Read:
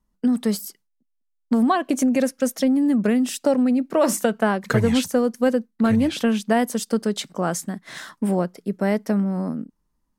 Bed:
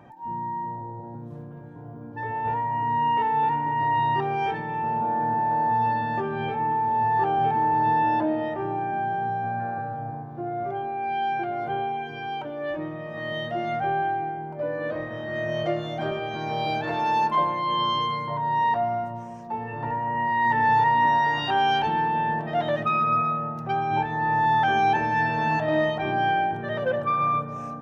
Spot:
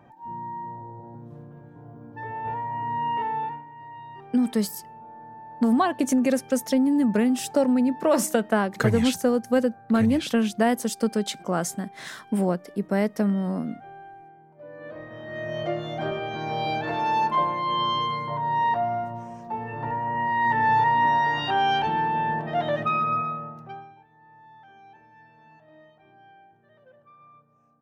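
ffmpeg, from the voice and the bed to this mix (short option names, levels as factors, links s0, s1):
-filter_complex "[0:a]adelay=4100,volume=0.794[s0];[1:a]volume=5.31,afade=t=out:st=3.31:d=0.35:silence=0.177828,afade=t=in:st=14.54:d=1.46:silence=0.11885,afade=t=out:st=22.89:d=1.06:silence=0.0334965[s1];[s0][s1]amix=inputs=2:normalize=0"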